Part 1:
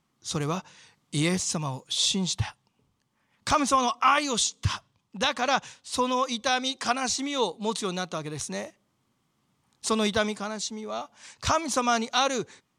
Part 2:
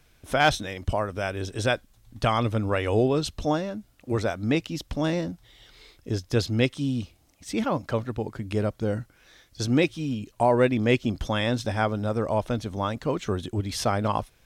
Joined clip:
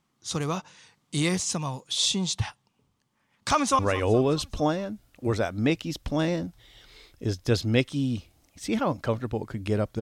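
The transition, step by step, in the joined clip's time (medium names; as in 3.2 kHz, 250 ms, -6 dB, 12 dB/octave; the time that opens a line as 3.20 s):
part 1
3.53–3.79 s: echo throw 210 ms, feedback 55%, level -15.5 dB
3.79 s: go over to part 2 from 2.64 s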